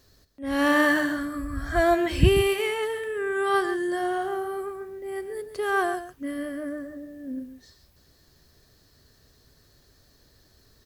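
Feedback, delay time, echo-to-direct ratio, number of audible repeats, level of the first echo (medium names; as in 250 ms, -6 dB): no regular repeats, 136 ms, -11.0 dB, 1, -11.0 dB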